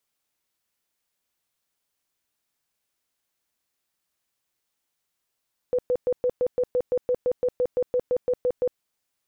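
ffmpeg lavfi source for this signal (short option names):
-f lavfi -i "aevalsrc='0.112*sin(2*PI*497*mod(t,0.17))*lt(mod(t,0.17),28/497)':d=3.06:s=44100"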